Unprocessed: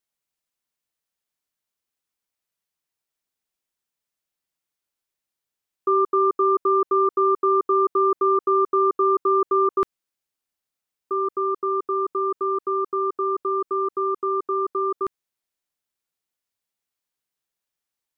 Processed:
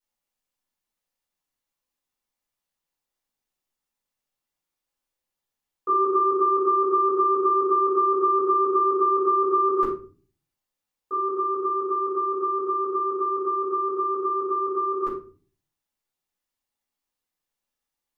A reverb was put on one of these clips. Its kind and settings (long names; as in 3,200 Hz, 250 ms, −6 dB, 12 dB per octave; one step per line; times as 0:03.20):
rectangular room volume 260 cubic metres, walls furnished, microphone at 5.7 metres
level −9.5 dB